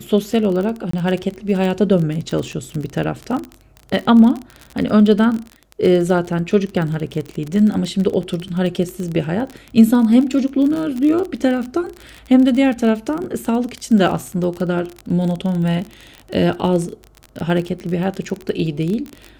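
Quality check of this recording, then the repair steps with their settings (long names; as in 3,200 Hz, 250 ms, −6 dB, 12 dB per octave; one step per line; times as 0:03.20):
surface crackle 32 per second −22 dBFS
0:00.91–0:00.93: drop-out 24 ms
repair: click removal
repair the gap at 0:00.91, 24 ms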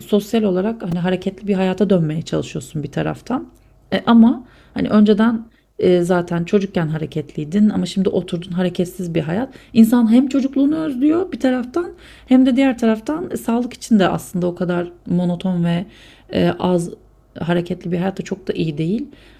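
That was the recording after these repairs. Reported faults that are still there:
none of them is left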